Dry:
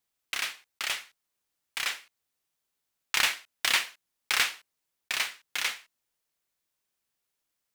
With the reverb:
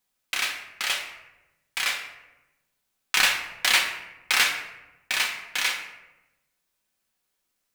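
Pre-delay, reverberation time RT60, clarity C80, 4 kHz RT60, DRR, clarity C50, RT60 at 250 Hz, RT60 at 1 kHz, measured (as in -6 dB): 4 ms, 1.0 s, 9.5 dB, 0.60 s, 1.0 dB, 7.5 dB, 1.3 s, 0.95 s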